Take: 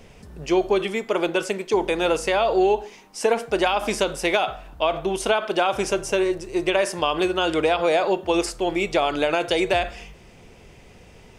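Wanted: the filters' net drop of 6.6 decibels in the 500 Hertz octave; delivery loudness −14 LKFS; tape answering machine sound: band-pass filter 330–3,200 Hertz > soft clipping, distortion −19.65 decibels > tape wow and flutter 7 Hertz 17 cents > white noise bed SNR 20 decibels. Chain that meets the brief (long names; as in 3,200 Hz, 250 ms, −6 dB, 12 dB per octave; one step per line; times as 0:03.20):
band-pass filter 330–3,200 Hz
parametric band 500 Hz −7.5 dB
soft clipping −15 dBFS
tape wow and flutter 7 Hz 17 cents
white noise bed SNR 20 dB
level +14 dB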